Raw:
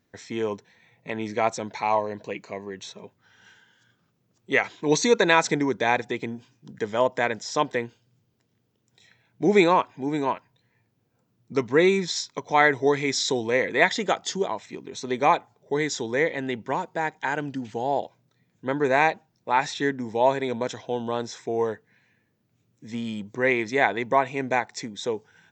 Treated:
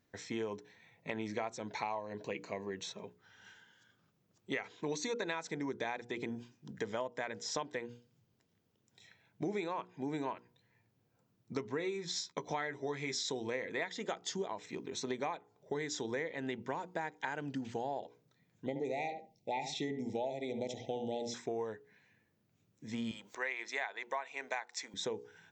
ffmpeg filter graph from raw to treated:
ffmpeg -i in.wav -filter_complex "[0:a]asettb=1/sr,asplit=3[link_01][link_02][link_03];[link_01]atrim=end=11.794[link_04];[link_02]atrim=start=11.79:end=13.21,asetpts=PTS-STARTPTS,afade=type=in:duration=0.004:curve=qsin,afade=type=out:start_time=1.416:duration=0.004:curve=qsin,agate=range=-33dB:threshold=-50dB:ratio=3:release=100:detection=peak,asplit=2[link_05][link_06];[link_06]adelay=13,volume=-8.5dB[link_07];[link_05][link_07]amix=inputs=2:normalize=0,atrim=end_sample=62622[link_08];[link_03]atrim=start=13.206[link_09];[link_04][link_08]acrossfade=duration=0.004:curve1=hsin:curve2=qsin[link_10];[link_10][link_09]acrossfade=duration=0.004:curve1=qsin:curve2=hsin,asettb=1/sr,asplit=3[link_11][link_12][link_13];[link_11]atrim=end=18.664[link_14];[link_12]atrim=start=18.66:end=21.34,asetpts=PTS-STARTPTS,afade=type=in:duration=0.004:curve=qsin,afade=type=out:start_time=2.676:duration=0.004:curve=qsin,asuperstop=centerf=1300:order=20:qfactor=1.2,asplit=2[link_15][link_16];[link_16]adelay=72,lowpass=frequency=1100:poles=1,volume=-7dB,asplit=2[link_17][link_18];[link_18]adelay=72,lowpass=frequency=1100:poles=1,volume=0.16,asplit=2[link_19][link_20];[link_20]adelay=72,lowpass=frequency=1100:poles=1,volume=0.16[link_21];[link_15][link_17][link_19][link_21]amix=inputs=4:normalize=0,atrim=end_sample=118188[link_22];[link_13]atrim=start=21.336[link_23];[link_14][link_22]acrossfade=duration=0.004:curve1=hsin:curve2=qsin[link_24];[link_24][link_23]acrossfade=duration=0.004:curve1=qsin:curve2=hsin,asettb=1/sr,asplit=3[link_25][link_26][link_27];[link_25]atrim=end=23.114[link_28];[link_26]atrim=start=23.11:end=24.94,asetpts=PTS-STARTPTS,afade=type=in:duration=0.004:curve=qsin,afade=type=out:start_time=1.826:duration=0.004:curve=qsin,highpass=800,acompressor=mode=upward:threshold=-40dB:ratio=2.5:attack=3.2:release=140:knee=2.83:detection=peak[link_29];[link_27]atrim=start=24.936[link_30];[link_28][link_29]acrossfade=duration=0.004:curve1=hsin:curve2=qsin[link_31];[link_31][link_30]acrossfade=duration=0.004:curve1=qsin:curve2=hsin,bandreject=frequency=60:width_type=h:width=6,bandreject=frequency=120:width_type=h:width=6,bandreject=frequency=180:width_type=h:width=6,bandreject=frequency=240:width_type=h:width=6,bandreject=frequency=300:width_type=h:width=6,bandreject=frequency=360:width_type=h:width=6,bandreject=frequency=420:width_type=h:width=6,bandreject=frequency=480:width_type=h:width=6,acompressor=threshold=-30dB:ratio=12,volume=-4dB" out.wav

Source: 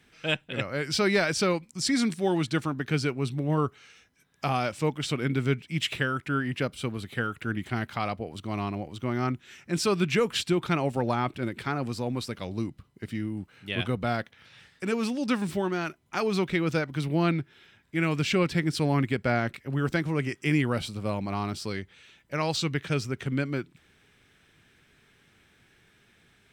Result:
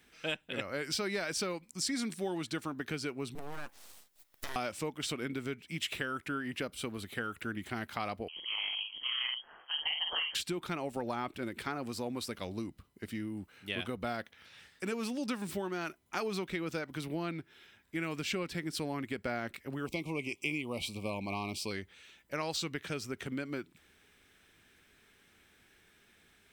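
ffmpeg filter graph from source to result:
ffmpeg -i in.wav -filter_complex "[0:a]asettb=1/sr,asplit=3[link_01][link_02][link_03];[link_01]atrim=end=3.354[link_04];[link_02]atrim=start=3.35:end=4.56,asetpts=PTS-STARTPTS,afade=type=in:duration=0.004:curve=qsin,afade=type=out:start_time=1.206:duration=0.004:curve=qsin,bass=frequency=250:gain=-6,treble=frequency=4000:gain=8,aeval=exprs='abs(val(0))':channel_layout=same,acompressor=threshold=-31dB:ratio=6:attack=3.2:release=140:knee=1:detection=peak[link_05];[link_03]atrim=start=4.556[link_06];[link_04][link_05]acrossfade=duration=0.004:curve1=hsin:curve2=qsin[link_07];[link_07][link_06]acrossfade=duration=0.004:curve1=qsin:curve2=hsin,asettb=1/sr,asplit=3[link_08][link_09][link_10];[link_08]atrim=end=8.284[link_11];[link_09]atrim=start=8.28:end=10.35,asetpts=PTS-STARTPTS,afade=type=in:duration=0.004:curve=qsin,afade=type=out:start_time=2.066:duration=0.004:curve=qsin,aeval=exprs='val(0)*sin(2*PI*77*n/s)':channel_layout=same,asplit=2[link_12][link_13];[link_13]adelay=49,volume=-5dB[link_14];[link_12][link_14]amix=inputs=2:normalize=0,atrim=end_sample=91287,lowpass=frequency=2800:width_type=q:width=0.5098,lowpass=frequency=2800:width_type=q:width=0.6013,lowpass=frequency=2800:width_type=q:width=0.9,lowpass=frequency=2800:width_type=q:width=2.563,afreqshift=-3300[link_15];[link_10]atrim=start=10.346[link_16];[link_11][link_15]acrossfade=duration=0.004:curve1=hsin:curve2=qsin[link_17];[link_17][link_16]acrossfade=duration=0.004:curve1=qsin:curve2=hsin,asettb=1/sr,asplit=3[link_18][link_19][link_20];[link_18]atrim=end=19.864[link_21];[link_19]atrim=start=19.86:end=21.71,asetpts=PTS-STARTPTS,afade=type=in:duration=0.004:curve=qsin,afade=type=out:start_time=1.846:duration=0.004:curve=qsin,asuperstop=centerf=1600:order=8:qfactor=1.4,equalizer=frequency=2300:width_type=o:width=0.67:gain=11[link_22];[link_20]atrim=start=21.706[link_23];[link_21][link_22]acrossfade=duration=0.004:curve1=hsin:curve2=qsin[link_24];[link_24][link_23]acrossfade=duration=0.004:curve1=qsin:curve2=hsin,highshelf=frequency=11000:gain=11.5,acompressor=threshold=-28dB:ratio=6,equalizer=frequency=130:width_type=o:width=0.72:gain=-9.5,volume=-3dB" out.wav

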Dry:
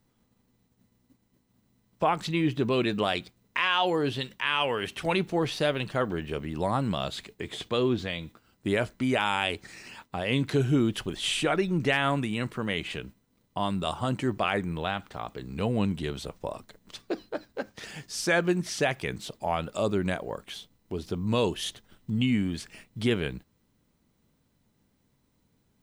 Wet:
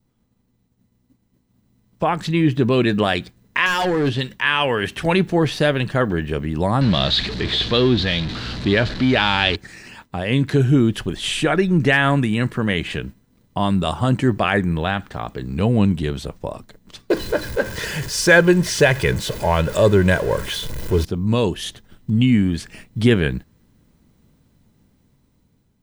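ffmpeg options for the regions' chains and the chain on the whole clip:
ffmpeg -i in.wav -filter_complex "[0:a]asettb=1/sr,asplit=3[link_01][link_02][link_03];[link_01]atrim=end=3.664[link_04];[link_02]atrim=start=3.66:end=4.21,asetpts=PTS-STARTPTS,afade=type=in:duration=0.004:curve=qsin,afade=type=out:start_time=0.546:duration=0.004:curve=qsin,lowpass=8600,volume=24.5dB,asoftclip=hard,volume=-24.5dB[link_05];[link_03]atrim=start=4.206[link_06];[link_04][link_05]acrossfade=duration=0.004:curve1=hsin:curve2=qsin[link_07];[link_07][link_06]acrossfade=duration=0.004:curve1=qsin:curve2=hsin,asettb=1/sr,asplit=3[link_08][link_09][link_10];[link_08]atrim=end=6.814[link_11];[link_09]atrim=start=6.81:end=9.56,asetpts=PTS-STARTPTS,afade=type=in:duration=0.004:curve=qsin,afade=type=out:start_time=2.746:duration=0.004:curve=qsin,aeval=exprs='val(0)+0.5*0.0251*sgn(val(0))':channel_layout=same,aeval=exprs='val(0)+0.00501*(sin(2*PI*60*n/s)+sin(2*PI*2*60*n/s)/2+sin(2*PI*3*60*n/s)/3+sin(2*PI*4*60*n/s)/4+sin(2*PI*5*60*n/s)/5)':channel_layout=same,lowpass=frequency=4100:width_type=q:width=4[link_12];[link_10]atrim=start=9.556[link_13];[link_11][link_12]acrossfade=duration=0.004:curve1=hsin:curve2=qsin[link_14];[link_14][link_13]acrossfade=duration=0.004:curve1=qsin:curve2=hsin,asettb=1/sr,asplit=3[link_15][link_16][link_17];[link_15]atrim=end=17.104[link_18];[link_16]atrim=start=17.1:end=21.05,asetpts=PTS-STARTPTS,afade=type=in:duration=0.004:curve=qsin,afade=type=out:start_time=3.946:duration=0.004:curve=qsin,aeval=exprs='val(0)+0.5*0.0133*sgn(val(0))':channel_layout=same,aecho=1:1:2:0.54,atrim=end_sample=174195,acontrast=53[link_19];[link_17]atrim=start=21.046[link_20];[link_18][link_19]acrossfade=duration=0.004:curve1=hsin:curve2=qsin[link_21];[link_21][link_20]acrossfade=duration=0.004:curve1=qsin:curve2=hsin,adynamicequalizer=threshold=0.00355:dfrequency=1700:dqfactor=5.9:tfrequency=1700:tqfactor=5.9:attack=5:release=100:ratio=0.375:range=4:mode=boostabove:tftype=bell,dynaudnorm=framelen=800:gausssize=5:maxgain=11.5dB,lowshelf=frequency=290:gain=7.5,volume=-2dB" out.wav

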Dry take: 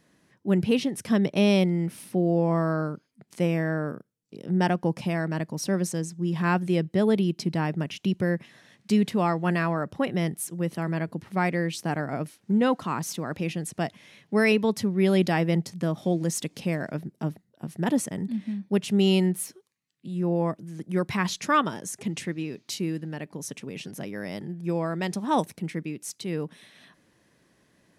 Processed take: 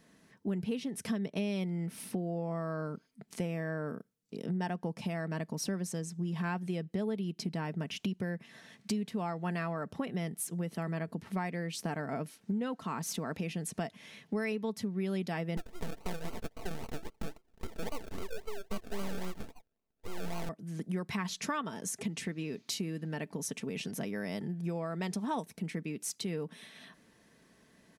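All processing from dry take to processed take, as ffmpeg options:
ffmpeg -i in.wav -filter_complex "[0:a]asettb=1/sr,asplit=3[link_01][link_02][link_03];[link_01]atrim=end=15.574[link_04];[link_02]atrim=start=15.57:end=20.49,asetpts=PTS-STARTPTS,afade=type=in:duration=0.004:curve=qsin,afade=type=out:start_time=4.916:duration=0.004:curve=qsin,acrusher=samples=35:mix=1:aa=0.000001:lfo=1:lforange=21:lforate=3.7,aeval=exprs='abs(val(0))':channel_layout=same[link_05];[link_03]atrim=start=20.486[link_06];[link_04][link_05]acrossfade=duration=0.004:curve1=hsin:curve2=qsin[link_07];[link_07][link_06]acrossfade=duration=0.004:curve1=qsin:curve2=hsin,aecho=1:1:4.5:0.36,acompressor=threshold=-33dB:ratio=5" out.wav

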